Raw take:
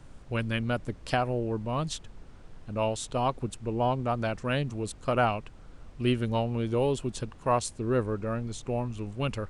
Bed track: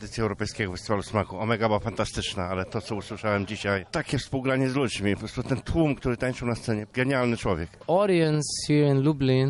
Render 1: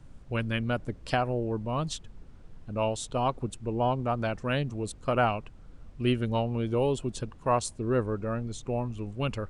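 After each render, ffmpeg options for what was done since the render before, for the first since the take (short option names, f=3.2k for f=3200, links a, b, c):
-af "afftdn=nr=6:nf=-49"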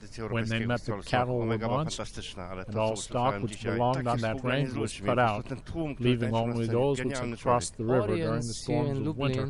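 -filter_complex "[1:a]volume=-10dB[a];[0:a][a]amix=inputs=2:normalize=0"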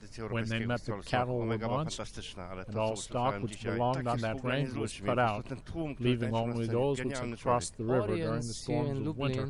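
-af "volume=-3.5dB"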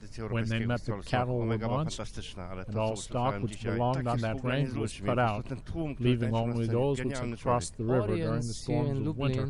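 -af "lowshelf=f=220:g=5.5"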